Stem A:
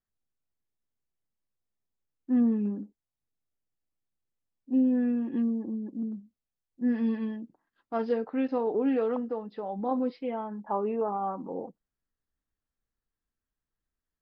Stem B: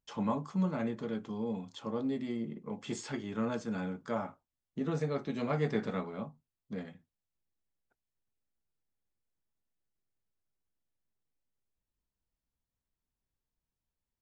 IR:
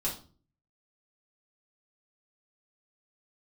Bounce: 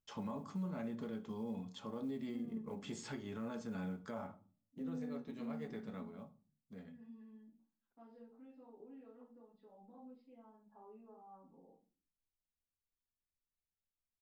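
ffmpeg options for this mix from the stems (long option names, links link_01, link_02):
-filter_complex "[0:a]acompressor=threshold=-42dB:ratio=1.5,adelay=50,volume=-12dB,asplit=2[link_01][link_02];[link_02]volume=-17.5dB[link_03];[1:a]acrusher=bits=9:mode=log:mix=0:aa=0.000001,equalizer=frequency=83:width=1.7:gain=6.5,volume=-6.5dB,afade=type=out:start_time=4.2:duration=0.29:silence=0.334965,asplit=3[link_04][link_05][link_06];[link_05]volume=-12dB[link_07];[link_06]apad=whole_len=628939[link_08];[link_01][link_08]sidechaingate=range=-33dB:threshold=-51dB:ratio=16:detection=peak[link_09];[2:a]atrim=start_sample=2205[link_10];[link_03][link_07]amix=inputs=2:normalize=0[link_11];[link_11][link_10]afir=irnorm=-1:irlink=0[link_12];[link_09][link_04][link_12]amix=inputs=3:normalize=0,alimiter=level_in=10.5dB:limit=-24dB:level=0:latency=1:release=145,volume=-10.5dB"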